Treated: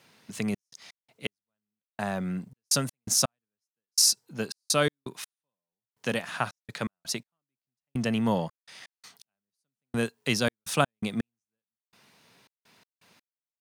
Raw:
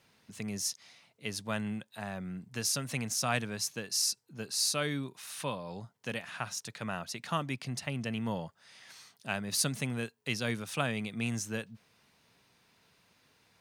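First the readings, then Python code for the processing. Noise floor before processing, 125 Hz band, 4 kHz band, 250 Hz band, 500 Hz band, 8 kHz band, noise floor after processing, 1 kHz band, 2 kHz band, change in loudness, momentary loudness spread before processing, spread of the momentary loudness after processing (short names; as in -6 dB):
-70 dBFS, +2.0 dB, +4.5 dB, +5.0 dB, +6.0 dB, +5.0 dB, under -85 dBFS, +4.0 dB, +2.5 dB, +5.5 dB, 12 LU, 17 LU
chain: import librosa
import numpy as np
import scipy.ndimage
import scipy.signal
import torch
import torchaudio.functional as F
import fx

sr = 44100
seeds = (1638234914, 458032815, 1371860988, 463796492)

p1 = scipy.signal.sosfilt(scipy.signal.butter(2, 130.0, 'highpass', fs=sr, output='sos'), x)
p2 = fx.dynamic_eq(p1, sr, hz=2400.0, q=1.3, threshold_db=-49.0, ratio=4.0, max_db=-5)
p3 = fx.step_gate(p2, sr, bpm=83, pattern='xxx.x.x....', floor_db=-60.0, edge_ms=4.5)
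p4 = np.sign(p3) * np.maximum(np.abs(p3) - 10.0 ** (-55.0 / 20.0), 0.0)
p5 = p3 + F.gain(torch.from_numpy(p4), -6.0).numpy()
y = F.gain(torch.from_numpy(p5), 6.5).numpy()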